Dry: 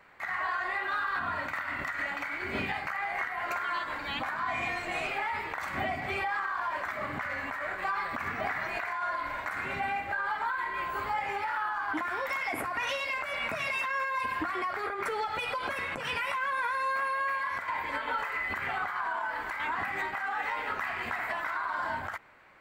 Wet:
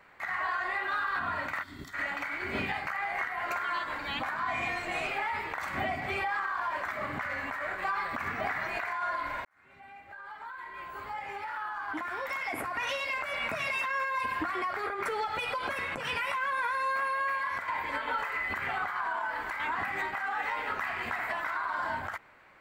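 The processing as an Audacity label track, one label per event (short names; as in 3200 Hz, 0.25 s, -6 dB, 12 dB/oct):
1.630000	1.930000	spectral gain 440–3100 Hz -17 dB
9.450000	13.180000	fade in linear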